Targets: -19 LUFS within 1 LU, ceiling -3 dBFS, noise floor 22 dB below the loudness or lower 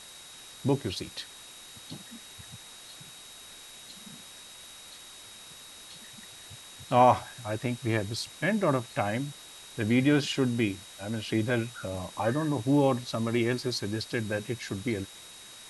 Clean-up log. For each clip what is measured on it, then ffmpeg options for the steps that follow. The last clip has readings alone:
steady tone 3800 Hz; tone level -50 dBFS; noise floor -48 dBFS; noise floor target -51 dBFS; loudness -29.0 LUFS; peak -9.5 dBFS; loudness target -19.0 LUFS
-> -af "bandreject=f=3.8k:w=30"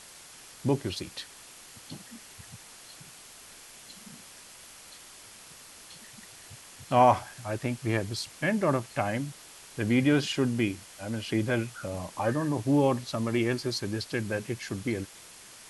steady tone none; noise floor -50 dBFS; noise floor target -51 dBFS
-> -af "afftdn=nr=6:nf=-50"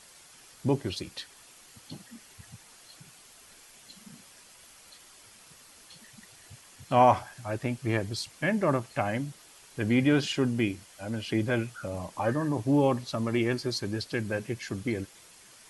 noise floor -54 dBFS; loudness -29.0 LUFS; peak -9.5 dBFS; loudness target -19.0 LUFS
-> -af "volume=10dB,alimiter=limit=-3dB:level=0:latency=1"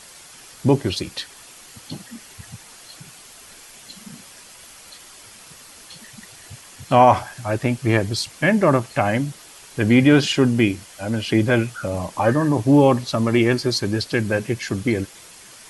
loudness -19.5 LUFS; peak -3.0 dBFS; noise floor -44 dBFS

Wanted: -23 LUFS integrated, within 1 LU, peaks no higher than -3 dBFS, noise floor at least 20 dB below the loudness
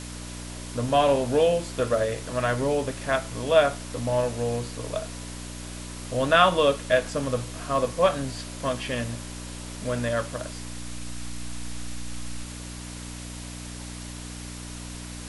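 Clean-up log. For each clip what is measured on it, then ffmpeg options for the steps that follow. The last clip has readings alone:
hum 60 Hz; harmonics up to 300 Hz; hum level -36 dBFS; noise floor -38 dBFS; noise floor target -46 dBFS; loudness -25.5 LUFS; peak -4.5 dBFS; loudness target -23.0 LUFS
-> -af "bandreject=f=60:t=h:w=4,bandreject=f=120:t=h:w=4,bandreject=f=180:t=h:w=4,bandreject=f=240:t=h:w=4,bandreject=f=300:t=h:w=4"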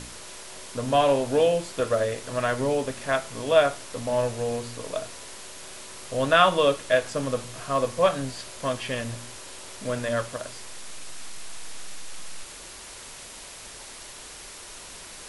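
hum none; noise floor -43 dBFS; noise floor target -46 dBFS
-> -af "afftdn=nr=6:nf=-43"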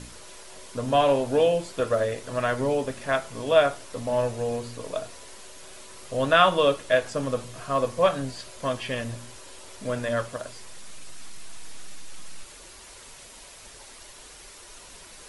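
noise floor -47 dBFS; loudness -25.5 LUFS; peak -4.5 dBFS; loudness target -23.0 LUFS
-> -af "volume=2.5dB,alimiter=limit=-3dB:level=0:latency=1"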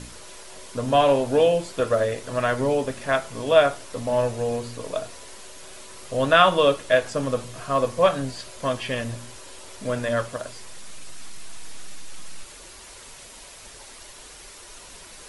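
loudness -23.0 LUFS; peak -3.0 dBFS; noise floor -44 dBFS

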